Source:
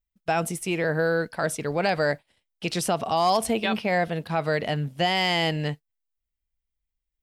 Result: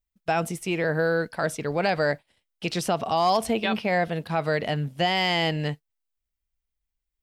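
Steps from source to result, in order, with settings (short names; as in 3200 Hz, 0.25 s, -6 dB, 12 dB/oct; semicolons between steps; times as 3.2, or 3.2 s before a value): dynamic EQ 9900 Hz, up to -6 dB, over -46 dBFS, Q 1.1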